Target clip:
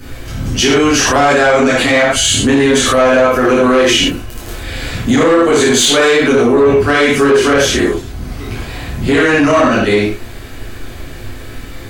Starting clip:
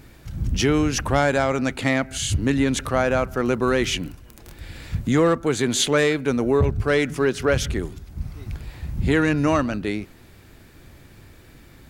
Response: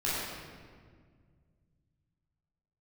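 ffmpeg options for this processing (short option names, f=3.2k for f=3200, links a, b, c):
-filter_complex "[0:a]acrossover=split=160|2300[a][b][c];[a]acompressor=threshold=-42dB:ratio=6[d];[d][b][c]amix=inputs=3:normalize=0[e];[1:a]atrim=start_sample=2205,afade=t=out:st=0.29:d=0.01,atrim=end_sample=13230,asetrate=74970,aresample=44100[f];[e][f]afir=irnorm=-1:irlink=0,asoftclip=type=tanh:threshold=-11.5dB,equalizer=f=160:t=o:w=0.78:g=-11,alimiter=level_in=17.5dB:limit=-1dB:release=50:level=0:latency=1,volume=-2.5dB"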